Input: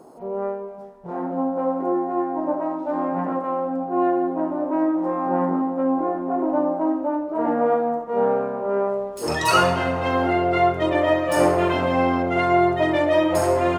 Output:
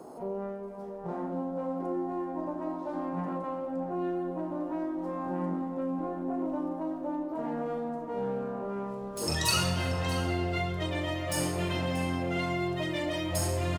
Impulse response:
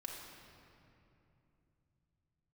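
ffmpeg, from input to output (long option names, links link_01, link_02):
-filter_complex "[0:a]aecho=1:1:633:0.178,acrossover=split=190|3000[link_01][link_02][link_03];[link_02]acompressor=threshold=-35dB:ratio=6[link_04];[link_01][link_04][link_03]amix=inputs=3:normalize=0,asplit=2[link_05][link_06];[1:a]atrim=start_sample=2205,adelay=36[link_07];[link_06][link_07]afir=irnorm=-1:irlink=0,volume=-7dB[link_08];[link_05][link_08]amix=inputs=2:normalize=0"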